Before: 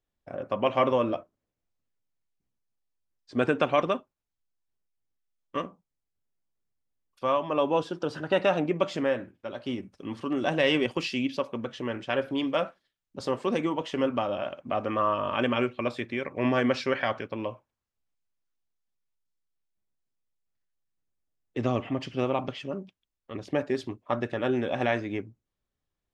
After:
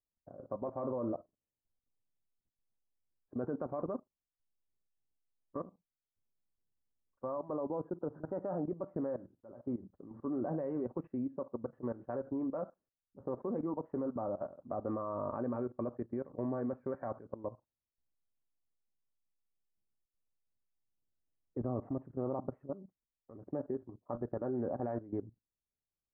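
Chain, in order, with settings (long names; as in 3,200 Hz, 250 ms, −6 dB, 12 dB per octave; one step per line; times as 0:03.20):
output level in coarse steps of 16 dB
Bessel low-pass filter 740 Hz, order 8
level −2 dB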